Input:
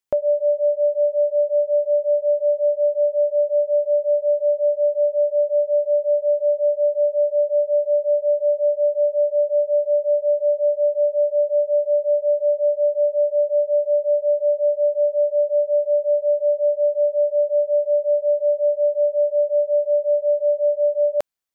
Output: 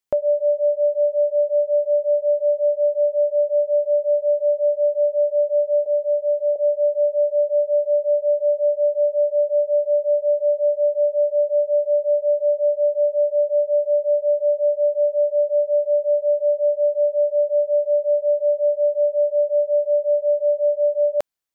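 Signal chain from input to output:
0:05.86–0:06.56: high-pass filter 460 Hz 12 dB per octave

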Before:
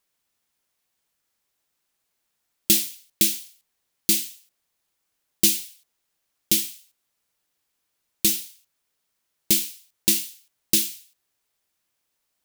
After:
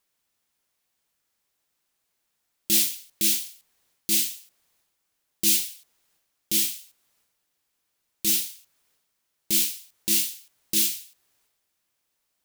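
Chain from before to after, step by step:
transient designer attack −9 dB, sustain +7 dB

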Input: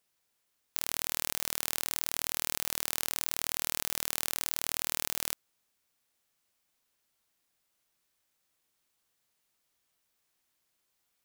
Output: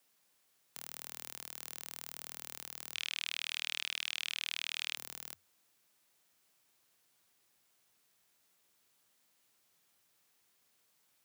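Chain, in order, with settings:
0:02.94–0:04.95: Butterworth band-reject 2,800 Hz, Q 3.5
wave folding −11.5 dBFS
frequency shifter +87 Hz
level +4.5 dB

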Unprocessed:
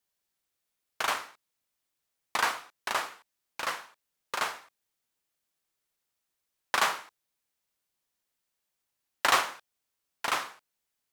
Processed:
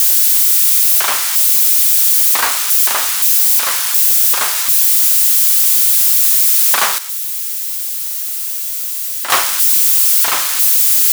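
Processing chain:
spike at every zero crossing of −16 dBFS
0:06.98–0:09.30: tuned comb filter 670 Hz, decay 0.5 s, mix 70%
level +9 dB

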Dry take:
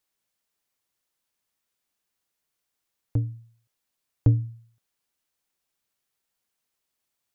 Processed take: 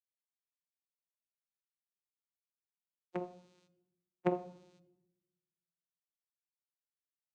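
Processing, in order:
gate on every frequency bin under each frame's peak −30 dB weak
bass and treble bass +7 dB, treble +5 dB
comb filter 2 ms, depth 74%
channel vocoder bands 4, saw 179 Hz
rectangular room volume 3,100 cubic metres, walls furnished, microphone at 0.69 metres
level +16 dB

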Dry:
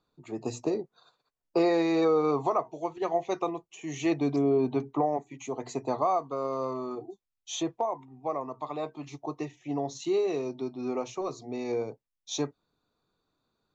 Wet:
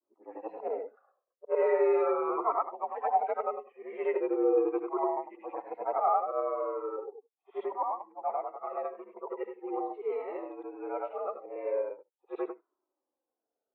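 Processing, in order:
every overlapping window played backwards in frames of 207 ms
low-pass that shuts in the quiet parts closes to 480 Hz, open at −29.5 dBFS
single-sideband voice off tune +71 Hz 270–2,100 Hz
flanger whose copies keep moving one way falling 0.39 Hz
level +6.5 dB

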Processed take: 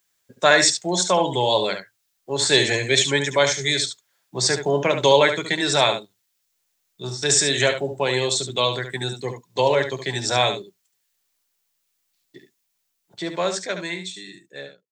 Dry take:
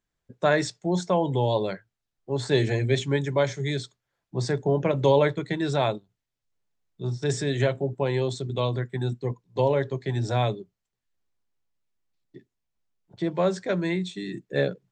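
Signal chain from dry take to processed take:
fade-out on the ending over 2.38 s
spectral tilt +4 dB per octave
single-tap delay 71 ms −8.5 dB
level +7 dB

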